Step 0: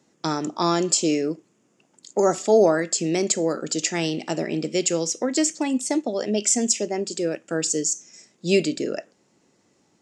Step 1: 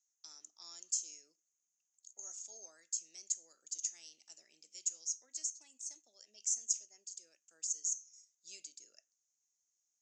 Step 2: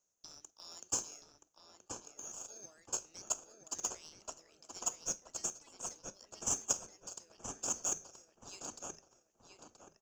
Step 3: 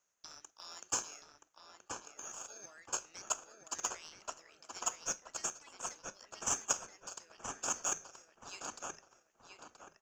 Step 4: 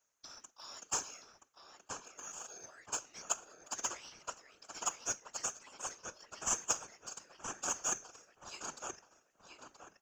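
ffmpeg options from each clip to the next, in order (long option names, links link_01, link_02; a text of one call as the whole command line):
ffmpeg -i in.wav -af "bandpass=frequency=6400:width_type=q:width=9.7:csg=0,volume=-5.5dB" out.wav
ffmpeg -i in.wav -filter_complex "[0:a]asplit=2[link_01][link_02];[link_02]acrusher=samples=22:mix=1:aa=0.000001,volume=-10dB[link_03];[link_01][link_03]amix=inputs=2:normalize=0,asplit=2[link_04][link_05];[link_05]adelay=976,lowpass=frequency=2400:poles=1,volume=-3dB,asplit=2[link_06][link_07];[link_07]adelay=976,lowpass=frequency=2400:poles=1,volume=0.34,asplit=2[link_08][link_09];[link_09]adelay=976,lowpass=frequency=2400:poles=1,volume=0.34,asplit=2[link_10][link_11];[link_11]adelay=976,lowpass=frequency=2400:poles=1,volume=0.34[link_12];[link_04][link_06][link_08][link_10][link_12]amix=inputs=5:normalize=0" out.wav
ffmpeg -i in.wav -af "equalizer=frequency=1700:width=0.58:gain=13.5,volume=-3dB" out.wav
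ffmpeg -i in.wav -af "afftfilt=real='hypot(re,im)*cos(2*PI*random(0))':imag='hypot(re,im)*sin(2*PI*random(1))':win_size=512:overlap=0.75,volume=6dB" out.wav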